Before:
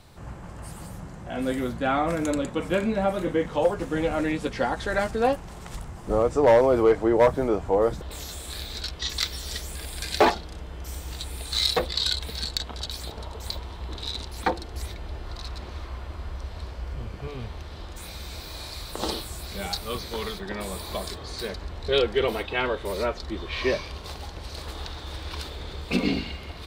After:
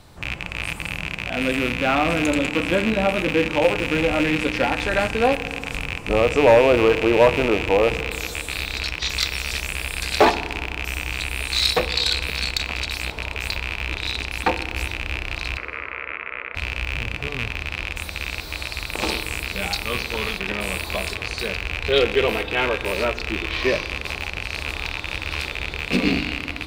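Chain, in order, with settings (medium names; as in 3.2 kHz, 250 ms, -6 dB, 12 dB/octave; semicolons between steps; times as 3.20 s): rattle on loud lows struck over -38 dBFS, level -16 dBFS; 15.57–16.55 s: cabinet simulation 410–2100 Hz, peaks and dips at 470 Hz +7 dB, 770 Hz -9 dB, 1.3 kHz +7 dB, 2.1 kHz +5 dB; FDN reverb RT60 2.1 s, low-frequency decay 1.35×, high-frequency decay 0.6×, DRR 12.5 dB; trim +3.5 dB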